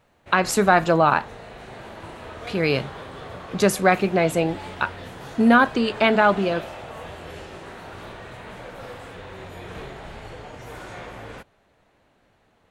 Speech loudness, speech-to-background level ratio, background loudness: -20.5 LUFS, 17.5 dB, -38.0 LUFS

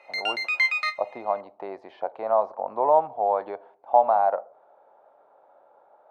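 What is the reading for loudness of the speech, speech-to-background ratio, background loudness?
-25.0 LUFS, -0.5 dB, -24.5 LUFS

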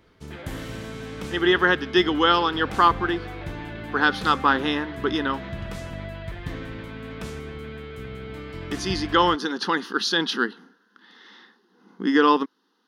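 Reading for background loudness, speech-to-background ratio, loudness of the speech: -35.5 LUFS, 13.0 dB, -22.5 LUFS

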